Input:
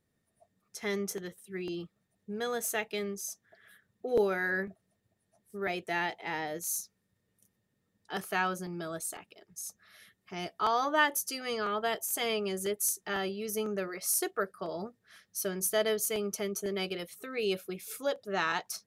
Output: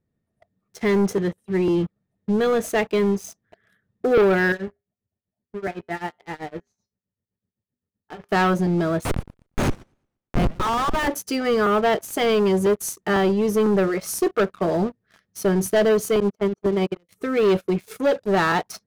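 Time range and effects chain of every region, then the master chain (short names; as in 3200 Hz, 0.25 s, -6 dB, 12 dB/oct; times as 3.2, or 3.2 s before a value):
4.52–8.29 tremolo 7.8 Hz, depth 86% + air absorption 200 m + resonator 81 Hz, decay 0.27 s, harmonics odd, mix 70%
9.05–11.08 HPF 850 Hz 24 dB/oct + Schmitt trigger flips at -38 dBFS + warbling echo 0.117 s, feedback 40%, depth 191 cents, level -21 dB
16.2–17.09 gate -34 dBFS, range -24 dB + LPF 6800 Hz + high shelf 3000 Hz -10.5 dB
whole clip: LPF 1800 Hz 6 dB/oct; low shelf 410 Hz +8 dB; sample leveller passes 3; gain +2.5 dB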